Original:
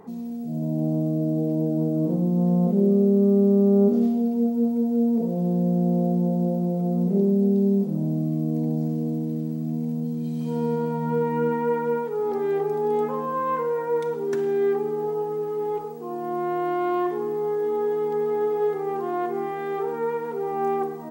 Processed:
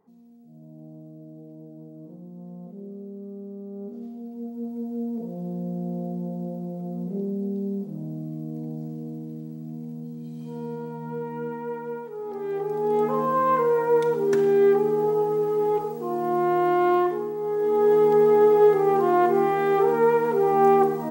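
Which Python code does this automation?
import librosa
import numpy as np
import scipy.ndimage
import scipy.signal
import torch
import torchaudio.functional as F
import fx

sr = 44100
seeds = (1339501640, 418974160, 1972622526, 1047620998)

y = fx.gain(x, sr, db=fx.line((3.69, -20.0), (4.83, -8.5), (12.25, -8.5), (13.21, 4.0), (16.94, 4.0), (17.35, -4.0), (17.94, 7.0)))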